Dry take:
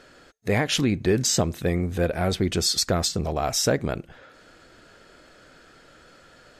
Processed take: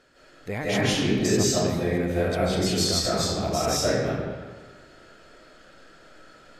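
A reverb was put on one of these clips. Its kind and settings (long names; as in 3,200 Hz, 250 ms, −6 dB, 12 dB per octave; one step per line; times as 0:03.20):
comb and all-pass reverb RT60 1.4 s, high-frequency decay 0.7×, pre-delay 120 ms, DRR −9 dB
level −9 dB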